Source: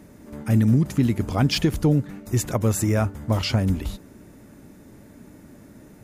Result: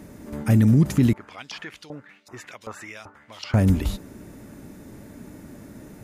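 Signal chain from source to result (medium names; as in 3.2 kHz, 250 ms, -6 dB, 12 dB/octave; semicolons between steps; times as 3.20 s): peak limiter -13.5 dBFS, peak gain reduction 3.5 dB; 1.13–3.54 s: LFO band-pass saw up 2.6 Hz 910–4800 Hz; trim +4 dB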